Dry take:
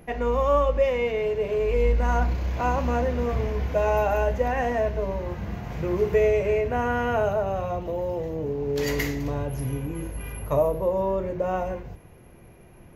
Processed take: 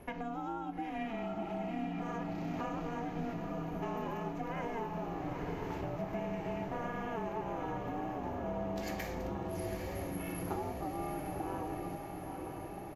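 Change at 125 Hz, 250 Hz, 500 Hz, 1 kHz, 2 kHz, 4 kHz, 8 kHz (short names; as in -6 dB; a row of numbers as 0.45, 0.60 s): -13.0, -6.0, -17.0, -10.0, -13.5, -11.5, -9.0 dB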